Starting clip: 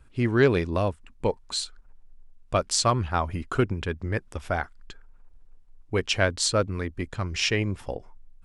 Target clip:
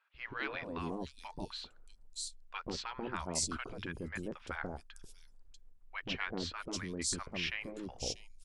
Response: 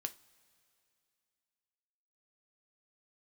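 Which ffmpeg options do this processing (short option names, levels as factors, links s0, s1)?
-filter_complex "[0:a]afftfilt=real='re*lt(hypot(re,im),0.251)':imag='im*lt(hypot(re,im),0.251)':win_size=1024:overlap=0.75,acrossover=split=820|4200[s0][s1][s2];[s0]adelay=140[s3];[s2]adelay=640[s4];[s3][s1][s4]amix=inputs=3:normalize=0,volume=0.447"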